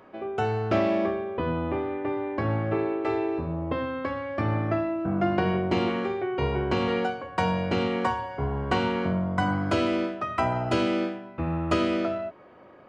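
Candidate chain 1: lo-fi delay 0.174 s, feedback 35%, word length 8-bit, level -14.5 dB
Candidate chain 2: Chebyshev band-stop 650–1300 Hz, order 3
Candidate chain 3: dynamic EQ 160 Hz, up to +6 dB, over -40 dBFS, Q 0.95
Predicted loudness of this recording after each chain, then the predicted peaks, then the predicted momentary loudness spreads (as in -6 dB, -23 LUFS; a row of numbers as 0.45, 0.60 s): -27.0, -28.5, -25.0 LUFS; -10.0, -12.5, -8.5 dBFS; 5, 6, 6 LU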